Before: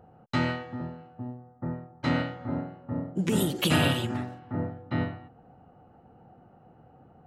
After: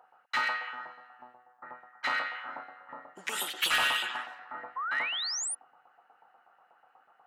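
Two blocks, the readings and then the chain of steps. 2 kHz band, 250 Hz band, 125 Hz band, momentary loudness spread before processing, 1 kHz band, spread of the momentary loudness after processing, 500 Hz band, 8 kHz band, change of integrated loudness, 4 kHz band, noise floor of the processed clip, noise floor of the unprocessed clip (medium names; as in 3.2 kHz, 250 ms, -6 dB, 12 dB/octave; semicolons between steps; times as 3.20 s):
+4.5 dB, -26.5 dB, under -30 dB, 16 LU, +1.5 dB, 20 LU, -13.5 dB, +5.0 dB, -1.0 dB, +2.5 dB, -67 dBFS, -57 dBFS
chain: LFO high-pass saw up 8.2 Hz 930–1900 Hz; repeats whose band climbs or falls 102 ms, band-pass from 3.5 kHz, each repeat -0.7 oct, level -7.5 dB; painted sound rise, 4.76–5.55 s, 1–10 kHz -33 dBFS; in parallel at -6 dB: wavefolder -23 dBFS; on the sum: trim -4 dB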